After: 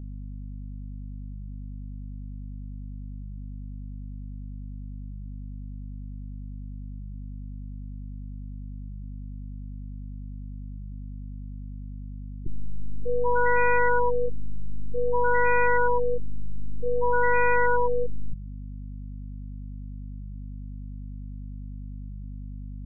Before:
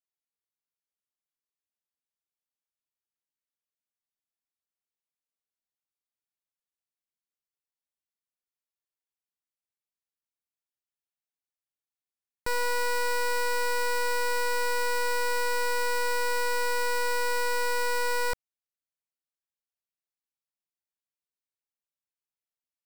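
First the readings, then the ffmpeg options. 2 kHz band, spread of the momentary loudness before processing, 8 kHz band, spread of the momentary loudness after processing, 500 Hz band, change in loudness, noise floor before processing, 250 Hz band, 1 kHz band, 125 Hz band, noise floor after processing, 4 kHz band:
+2.0 dB, 1 LU, under -40 dB, 18 LU, +5.5 dB, -2.5 dB, under -85 dBFS, +20.5 dB, +3.5 dB, n/a, -37 dBFS, under -40 dB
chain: -af "aeval=exprs='val(0)+0.00708*(sin(2*PI*50*n/s)+sin(2*PI*2*50*n/s)/2+sin(2*PI*3*50*n/s)/3+sin(2*PI*4*50*n/s)/4+sin(2*PI*5*50*n/s)/5)':c=same,afftfilt=real='re*lt(b*sr/1024,250*pow(2600/250,0.5+0.5*sin(2*PI*0.53*pts/sr)))':imag='im*lt(b*sr/1024,250*pow(2600/250,0.5+0.5*sin(2*PI*0.53*pts/sr)))':win_size=1024:overlap=0.75,volume=7.5dB"

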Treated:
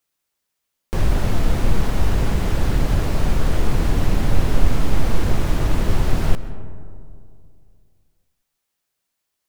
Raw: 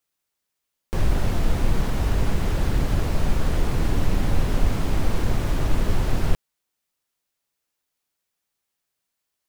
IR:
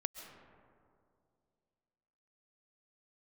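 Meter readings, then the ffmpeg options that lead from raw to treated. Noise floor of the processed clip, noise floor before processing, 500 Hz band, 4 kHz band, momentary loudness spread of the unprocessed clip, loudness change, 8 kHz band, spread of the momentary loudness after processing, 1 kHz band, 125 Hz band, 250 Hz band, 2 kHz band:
-78 dBFS, -81 dBFS, +3.0 dB, +3.0 dB, 2 LU, +3.0 dB, +3.0 dB, 4 LU, +3.0 dB, +3.0 dB, +3.0 dB, +3.0 dB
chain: -filter_complex "[0:a]asplit=2[a][b];[1:a]atrim=start_sample=2205[c];[b][c]afir=irnorm=-1:irlink=0,volume=-1dB[d];[a][d]amix=inputs=2:normalize=0,volume=-2dB"

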